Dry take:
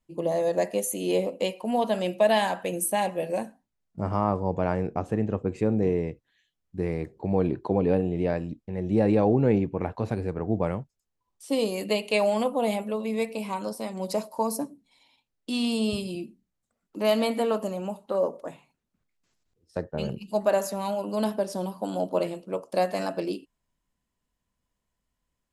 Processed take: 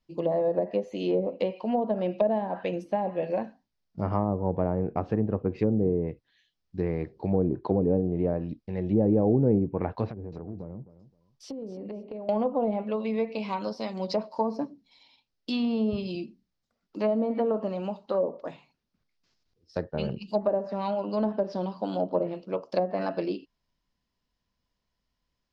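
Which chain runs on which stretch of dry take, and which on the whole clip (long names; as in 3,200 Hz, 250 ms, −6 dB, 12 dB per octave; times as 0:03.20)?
0:10.06–0:12.29: treble cut that deepens with the level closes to 390 Hz, closed at −24.5 dBFS + downward compressor 4 to 1, threshold −35 dBFS + repeating echo 262 ms, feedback 21%, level −15 dB
whole clip: treble cut that deepens with the level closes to 550 Hz, closed at −20 dBFS; high shelf with overshoot 6,800 Hz −11 dB, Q 3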